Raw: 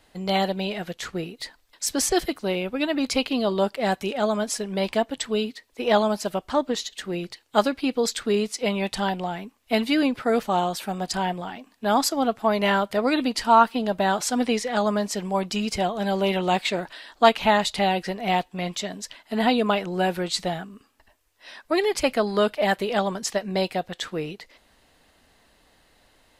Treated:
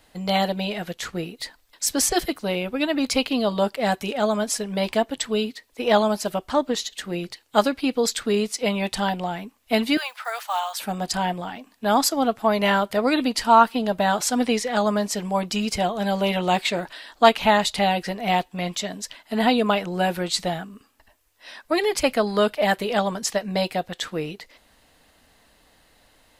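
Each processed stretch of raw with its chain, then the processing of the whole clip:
9.97–10.79 block floating point 7-bit + inverse Chebyshev high-pass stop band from 310 Hz, stop band 50 dB
whole clip: high shelf 11000 Hz +6 dB; notch 380 Hz, Q 12; gain +1.5 dB

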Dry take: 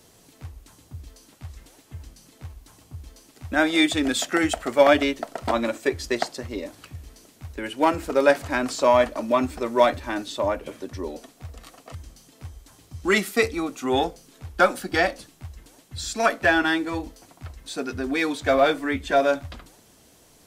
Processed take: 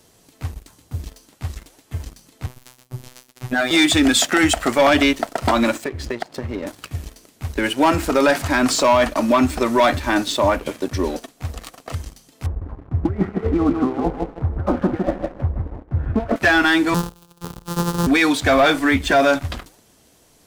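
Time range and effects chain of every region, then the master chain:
2.46–3.71 expander -49 dBFS + bell 13000 Hz +3.5 dB 0.27 oct + robotiser 126 Hz
5.84–6.67 HPF 60 Hz + tone controls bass +6 dB, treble -13 dB + compressor 4:1, threshold -35 dBFS
12.46–16.36 negative-ratio compressor -28 dBFS, ratio -0.5 + Gaussian blur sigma 7 samples + feedback echo 0.156 s, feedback 28%, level -5.5 dB
16.94–18.07 sample sorter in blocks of 256 samples + fixed phaser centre 430 Hz, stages 8
whole clip: dynamic EQ 480 Hz, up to -7 dB, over -35 dBFS, Q 1.8; sample leveller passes 2; limiter -12 dBFS; gain +4 dB

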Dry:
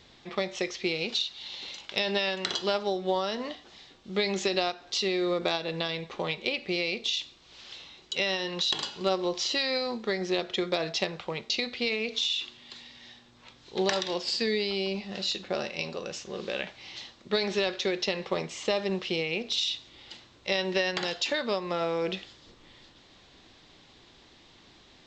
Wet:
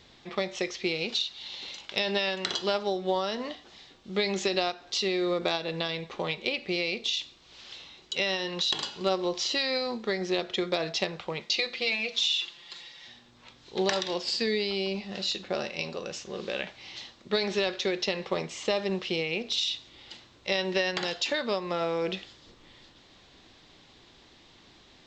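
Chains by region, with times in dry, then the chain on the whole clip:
11.4–13.08 low shelf 390 Hz -7 dB + notches 60/120/180/240/300/360 Hz + comb 5.8 ms, depth 86%
whole clip: dry

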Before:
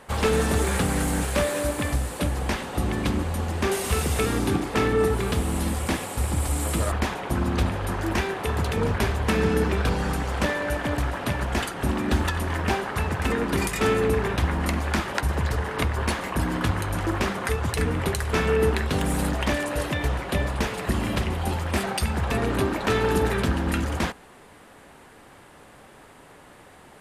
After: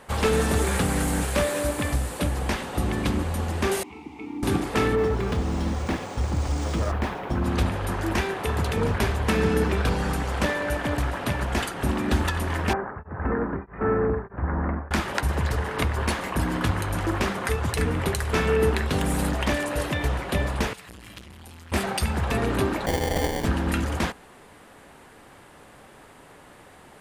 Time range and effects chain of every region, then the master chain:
3.83–4.43 vowel filter u + requantised 10-bit, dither triangular + air absorption 67 m
4.95–7.44 high shelf 2100 Hz -6 dB + hard clip -18 dBFS + decimation joined by straight lines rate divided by 3×
12.73–14.91 steep low-pass 1700 Hz + beating tremolo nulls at 1.6 Hz
20.73–21.72 passive tone stack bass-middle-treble 5-5-5 + core saturation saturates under 830 Hz
22.86–23.45 ring modulator 360 Hz + sample-rate reducer 1300 Hz
whole clip: dry

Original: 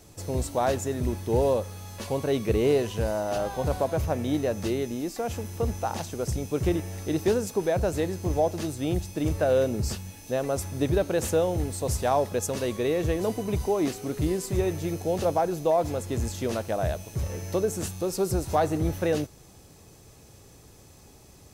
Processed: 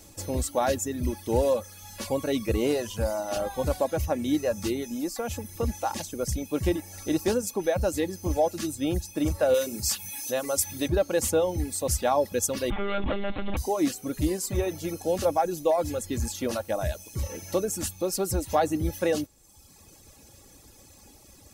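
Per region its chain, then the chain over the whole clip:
9.54–10.88 tilt +2 dB/oct + notches 50/100/150/200/250/300/350/400/450 Hz + upward compressor, threshold -30 dBFS
12.7–13.57 air absorption 430 m + companded quantiser 2-bit + monotone LPC vocoder at 8 kHz 200 Hz
whole clip: reverb removal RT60 1 s; high shelf 4500 Hz +6 dB; comb 3.6 ms, depth 41%

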